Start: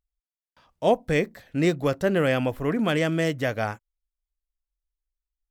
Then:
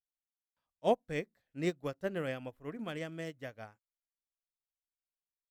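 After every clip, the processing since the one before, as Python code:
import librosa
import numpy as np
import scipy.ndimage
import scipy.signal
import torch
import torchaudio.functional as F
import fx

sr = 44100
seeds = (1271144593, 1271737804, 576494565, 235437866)

y = fx.upward_expand(x, sr, threshold_db=-31.0, expansion=2.5)
y = y * librosa.db_to_amplitude(-7.0)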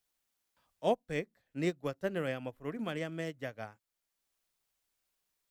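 y = fx.band_squash(x, sr, depth_pct=40)
y = y * librosa.db_to_amplitude(1.5)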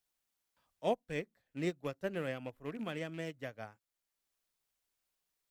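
y = fx.rattle_buzz(x, sr, strikes_db=-41.0, level_db=-40.0)
y = y * librosa.db_to_amplitude(-3.0)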